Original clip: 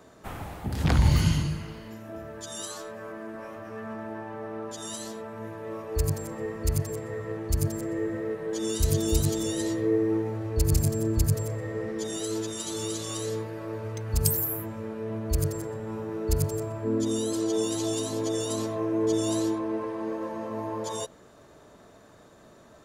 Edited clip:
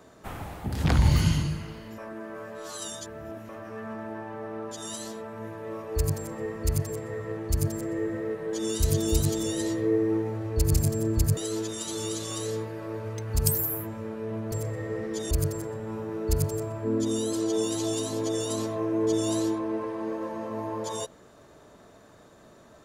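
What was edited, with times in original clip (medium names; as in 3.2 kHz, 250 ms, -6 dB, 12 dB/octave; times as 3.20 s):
1.98–3.49 s: reverse
11.37–12.16 s: move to 15.31 s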